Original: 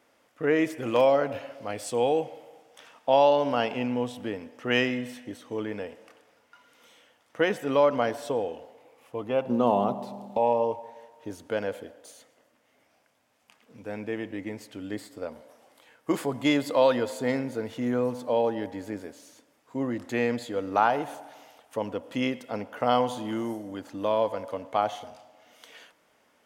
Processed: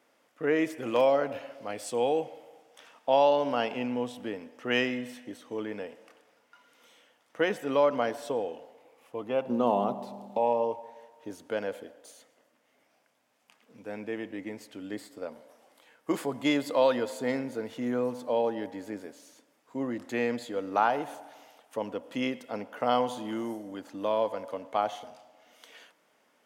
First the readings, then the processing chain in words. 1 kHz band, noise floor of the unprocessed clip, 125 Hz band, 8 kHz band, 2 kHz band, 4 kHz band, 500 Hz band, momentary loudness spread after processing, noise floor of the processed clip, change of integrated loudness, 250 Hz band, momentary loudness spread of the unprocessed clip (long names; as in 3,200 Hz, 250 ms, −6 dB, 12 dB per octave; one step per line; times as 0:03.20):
−2.5 dB, −66 dBFS, −6.5 dB, −2.5 dB, −2.5 dB, −2.5 dB, −2.5 dB, 16 LU, −69 dBFS, −2.5 dB, −3.0 dB, 16 LU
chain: high-pass filter 150 Hz 12 dB per octave
level −2.5 dB